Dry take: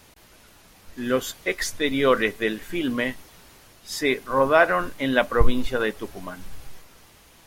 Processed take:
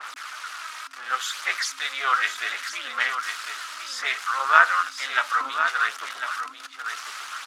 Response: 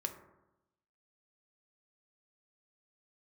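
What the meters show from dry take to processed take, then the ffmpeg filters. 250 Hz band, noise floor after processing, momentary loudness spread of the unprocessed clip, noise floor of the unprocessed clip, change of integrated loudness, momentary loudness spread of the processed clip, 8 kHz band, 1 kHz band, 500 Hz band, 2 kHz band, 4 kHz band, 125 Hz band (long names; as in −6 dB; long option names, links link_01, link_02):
below −25 dB, −42 dBFS, 16 LU, −53 dBFS, −1.5 dB, 15 LU, +2.0 dB, +4.0 dB, −18.5 dB, +4.0 dB, +2.5 dB, below −40 dB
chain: -filter_complex "[0:a]aeval=exprs='val(0)+0.5*0.0562*sgn(val(0))':channel_layout=same,lowpass=7000,aphaser=in_gain=1:out_gain=1:delay=3.2:decay=0.41:speed=0.66:type=sinusoidal,tremolo=f=270:d=0.824,highpass=frequency=1300:width_type=q:width=5.2,asplit=2[link_01][link_02];[link_02]aecho=0:1:1050:0.398[link_03];[link_01][link_03]amix=inputs=2:normalize=0,adynamicequalizer=threshold=0.0316:dfrequency=2300:dqfactor=0.7:tfrequency=2300:tqfactor=0.7:attack=5:release=100:ratio=0.375:range=3.5:mode=boostabove:tftype=highshelf,volume=-6dB"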